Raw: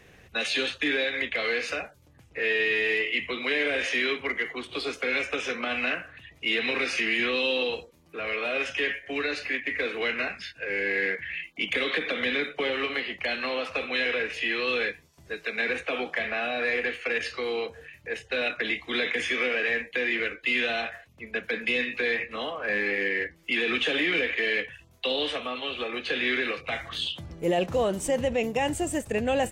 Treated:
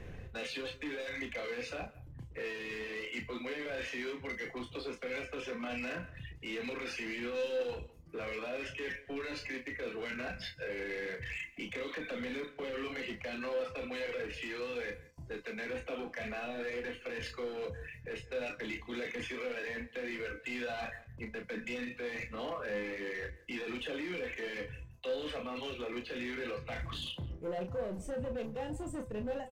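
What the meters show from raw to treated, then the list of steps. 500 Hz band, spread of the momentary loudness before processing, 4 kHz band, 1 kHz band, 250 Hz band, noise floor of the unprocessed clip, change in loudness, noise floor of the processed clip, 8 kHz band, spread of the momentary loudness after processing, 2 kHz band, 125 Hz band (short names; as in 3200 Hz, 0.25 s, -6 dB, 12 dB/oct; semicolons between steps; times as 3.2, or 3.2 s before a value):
-9.0 dB, 8 LU, -15.0 dB, -11.0 dB, -8.0 dB, -56 dBFS, -12.5 dB, -54 dBFS, -13.0 dB, 5 LU, -14.5 dB, -3.0 dB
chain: ending faded out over 0.62 s; reverb removal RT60 0.78 s; tilt -3 dB/oct; reverse; compressor 12:1, threshold -34 dBFS, peak gain reduction 17.5 dB; reverse; limiter -31.5 dBFS, peak gain reduction 7 dB; outdoor echo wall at 29 m, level -21 dB; hard clip -36 dBFS, distortion -17 dB; resonator 510 Hz, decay 0.32 s, harmonics all, mix 70%; sample leveller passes 1; doubler 33 ms -6.5 dB; gain +7 dB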